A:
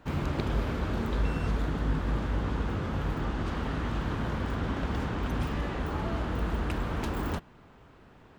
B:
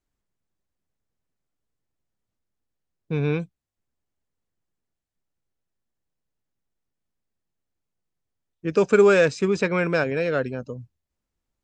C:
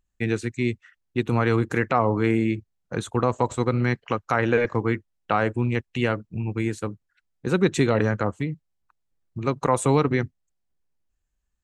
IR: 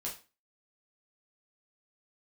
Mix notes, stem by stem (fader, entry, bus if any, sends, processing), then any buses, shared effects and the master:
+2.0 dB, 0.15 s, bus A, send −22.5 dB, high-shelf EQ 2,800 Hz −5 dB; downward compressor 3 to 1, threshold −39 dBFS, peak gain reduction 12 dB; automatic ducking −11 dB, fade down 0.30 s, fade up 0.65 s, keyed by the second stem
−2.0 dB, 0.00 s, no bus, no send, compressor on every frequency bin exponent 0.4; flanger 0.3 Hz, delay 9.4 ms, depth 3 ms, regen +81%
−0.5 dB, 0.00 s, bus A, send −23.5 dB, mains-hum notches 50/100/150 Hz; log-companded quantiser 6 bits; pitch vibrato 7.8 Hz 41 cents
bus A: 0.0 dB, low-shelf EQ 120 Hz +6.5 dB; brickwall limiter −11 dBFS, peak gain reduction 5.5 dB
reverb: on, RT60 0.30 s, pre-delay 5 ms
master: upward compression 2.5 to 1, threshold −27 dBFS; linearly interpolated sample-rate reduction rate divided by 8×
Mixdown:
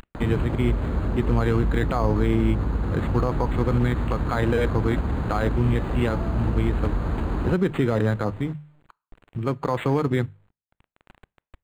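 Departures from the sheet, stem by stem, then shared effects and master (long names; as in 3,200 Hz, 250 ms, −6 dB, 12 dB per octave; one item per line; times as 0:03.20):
stem A +2.0 dB → +11.0 dB
stem B: muted
stem C: missing pitch vibrato 7.8 Hz 41 cents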